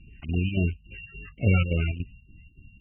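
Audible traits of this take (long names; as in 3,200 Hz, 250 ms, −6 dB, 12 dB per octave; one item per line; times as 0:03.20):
a buzz of ramps at a fixed pitch in blocks of 16 samples
chopped level 3.5 Hz, depth 60%, duty 70%
phaser sweep stages 2, 3.6 Hz, lowest notch 430–1,100 Hz
MP3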